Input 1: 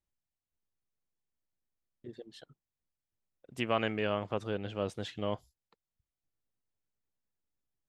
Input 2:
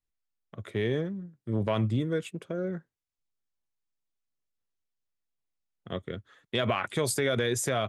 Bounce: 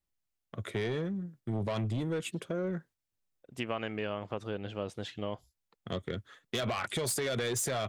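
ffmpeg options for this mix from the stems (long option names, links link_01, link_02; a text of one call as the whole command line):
ffmpeg -i stem1.wav -i stem2.wav -filter_complex "[0:a]acontrast=82,volume=-7dB[link_01];[1:a]highshelf=frequency=2500:gain=4,agate=range=-9dB:threshold=-55dB:ratio=16:detection=peak,asoftclip=type=tanh:threshold=-26dB,volume=2.5dB,asplit=2[link_02][link_03];[link_03]apad=whole_len=347813[link_04];[link_01][link_04]sidechaincompress=threshold=-48dB:ratio=8:attack=8.9:release=109[link_05];[link_05][link_02]amix=inputs=2:normalize=0,acompressor=threshold=-30dB:ratio=6" out.wav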